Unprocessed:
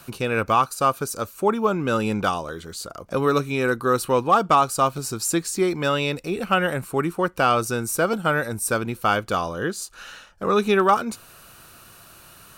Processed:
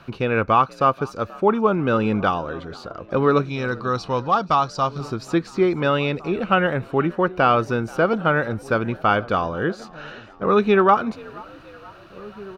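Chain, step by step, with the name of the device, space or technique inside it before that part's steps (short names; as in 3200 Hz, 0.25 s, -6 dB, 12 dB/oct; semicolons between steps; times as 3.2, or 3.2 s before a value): 3.45–5.01 EQ curve 110 Hz 0 dB, 390 Hz -9 dB, 820 Hz -3 dB, 2400 Hz -5 dB, 5300 Hz +10 dB, 15000 Hz -12 dB; frequency-shifting echo 0.481 s, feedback 57%, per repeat +54 Hz, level -23 dB; shout across a valley (air absorption 260 m; outdoor echo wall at 290 m, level -20 dB); gain +3.5 dB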